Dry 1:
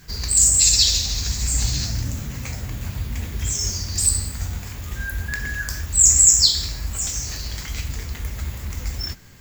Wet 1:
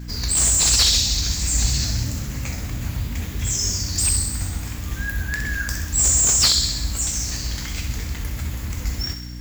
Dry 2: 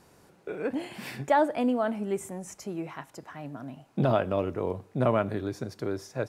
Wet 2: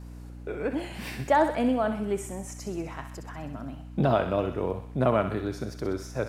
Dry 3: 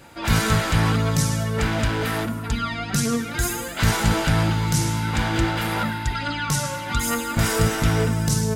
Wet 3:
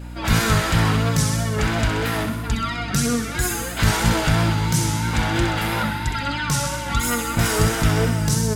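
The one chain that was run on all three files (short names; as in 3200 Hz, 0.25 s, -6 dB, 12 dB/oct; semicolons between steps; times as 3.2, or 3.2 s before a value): vibrato 3 Hz 58 cents; hum 60 Hz, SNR 13 dB; on a send: thinning echo 64 ms, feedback 68%, high-pass 850 Hz, level -8 dB; on the sum: slew limiter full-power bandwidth 1000 Hz; gain +1 dB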